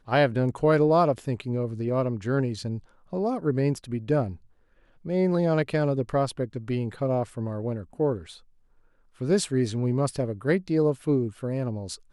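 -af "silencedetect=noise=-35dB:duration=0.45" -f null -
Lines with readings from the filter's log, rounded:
silence_start: 4.34
silence_end: 5.05 | silence_duration: 0.71
silence_start: 8.30
silence_end: 9.21 | silence_duration: 0.90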